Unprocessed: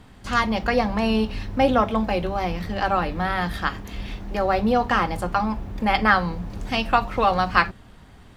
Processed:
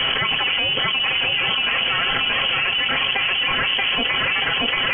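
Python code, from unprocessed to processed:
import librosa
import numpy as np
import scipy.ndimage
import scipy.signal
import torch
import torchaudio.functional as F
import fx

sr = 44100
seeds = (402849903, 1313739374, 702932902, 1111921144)

y = fx.lower_of_two(x, sr, delay_ms=7.5)
y = scipy.signal.sosfilt(scipy.signal.butter(4, 54.0, 'highpass', fs=sr, output='sos'), y)
y = fx.low_shelf(y, sr, hz=140.0, db=-5.0)
y = y + 0.39 * np.pad(y, (int(3.3 * sr / 1000.0), 0))[:len(y)]
y = fx.dynamic_eq(y, sr, hz=940.0, q=0.91, threshold_db=-36.0, ratio=4.0, max_db=-5)
y = fx.stretch_vocoder(y, sr, factor=0.59)
y = fx.quant_companded(y, sr, bits=4)
y = fx.echo_feedback(y, sr, ms=631, feedback_pct=42, wet_db=-5)
y = fx.freq_invert(y, sr, carrier_hz=3200)
y = fx.env_flatten(y, sr, amount_pct=100)
y = y * librosa.db_to_amplitude(-3.5)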